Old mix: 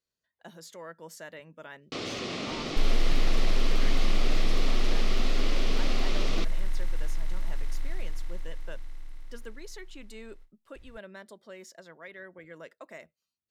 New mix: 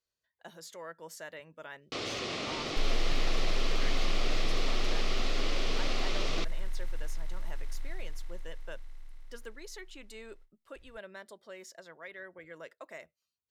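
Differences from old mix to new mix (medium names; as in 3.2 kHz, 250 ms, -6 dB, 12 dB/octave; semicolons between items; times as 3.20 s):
second sound -6.0 dB; master: add peaking EQ 210 Hz -7 dB 1.2 oct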